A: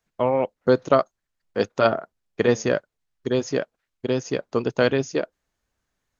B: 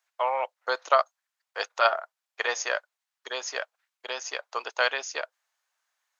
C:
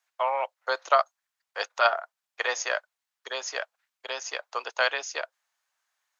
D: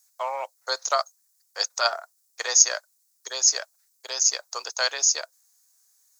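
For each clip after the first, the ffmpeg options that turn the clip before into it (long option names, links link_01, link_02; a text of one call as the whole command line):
ffmpeg -i in.wav -af "highpass=frequency=760:width=0.5412,highpass=frequency=760:width=1.3066,volume=2dB" out.wav
ffmpeg -i in.wav -af "afreqshift=16" out.wav
ffmpeg -i in.wav -af "aexciter=amount=14.3:drive=3.7:freq=4500,volume=-3dB" out.wav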